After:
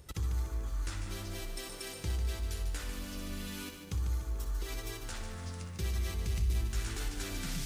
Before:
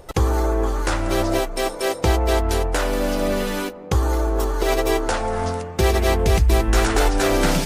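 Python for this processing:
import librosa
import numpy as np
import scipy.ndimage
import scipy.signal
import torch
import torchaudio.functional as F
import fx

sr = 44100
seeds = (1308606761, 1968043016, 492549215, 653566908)

p1 = fx.over_compress(x, sr, threshold_db=-29.0, ratio=-1.0)
p2 = x + F.gain(torch.from_numpy(p1), -3.0).numpy()
p3 = scipy.signal.sosfilt(scipy.signal.butter(2, 49.0, 'highpass', fs=sr, output='sos'), p2)
p4 = fx.tone_stack(p3, sr, knobs='6-0-2')
p5 = p4 + fx.room_flutter(p4, sr, wall_m=10.7, rt60_s=0.37, dry=0)
p6 = 10.0 ** (-23.0 / 20.0) * np.tanh(p5 / 10.0 ** (-23.0 / 20.0))
p7 = fx.echo_crushed(p6, sr, ms=147, feedback_pct=55, bits=10, wet_db=-8.0)
y = F.gain(torch.from_numpy(p7), -1.5).numpy()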